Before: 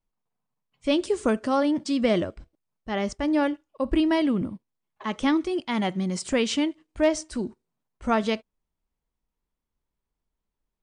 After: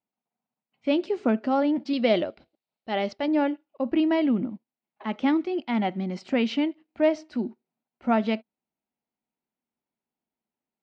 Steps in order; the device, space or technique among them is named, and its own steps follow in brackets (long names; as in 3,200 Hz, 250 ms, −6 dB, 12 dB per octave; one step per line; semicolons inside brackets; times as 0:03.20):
0:01.93–0:03.28: octave-band graphic EQ 250/500/4,000 Hz −5/+4/+11 dB
kitchen radio (loudspeaker in its box 220–3,900 Hz, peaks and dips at 230 Hz +6 dB, 460 Hz −4 dB, 750 Hz +4 dB, 1,100 Hz −7 dB, 1,700 Hz −4 dB, 3,400 Hz −6 dB)